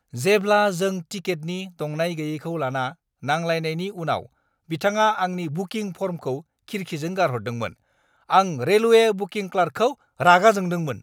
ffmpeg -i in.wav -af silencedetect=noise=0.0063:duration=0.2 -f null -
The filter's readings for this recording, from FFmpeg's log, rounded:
silence_start: 2.93
silence_end: 3.23 | silence_duration: 0.29
silence_start: 4.26
silence_end: 4.69 | silence_duration: 0.43
silence_start: 6.42
silence_end: 6.68 | silence_duration: 0.27
silence_start: 7.73
silence_end: 8.29 | silence_duration: 0.57
silence_start: 9.94
silence_end: 10.19 | silence_duration: 0.25